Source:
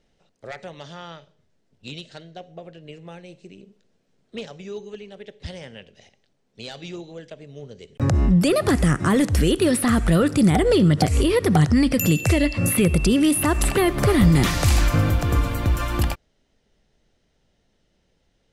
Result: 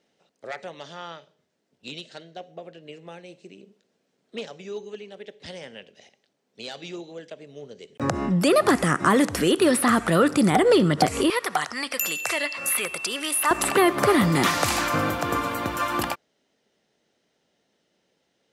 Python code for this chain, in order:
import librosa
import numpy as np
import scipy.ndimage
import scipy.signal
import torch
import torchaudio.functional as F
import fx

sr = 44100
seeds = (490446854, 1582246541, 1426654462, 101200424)

y = fx.highpass(x, sr, hz=fx.steps((0.0, 230.0), (11.3, 890.0), (13.51, 240.0)), slope=12)
y = fx.dynamic_eq(y, sr, hz=1100.0, q=1.1, threshold_db=-39.0, ratio=4.0, max_db=6)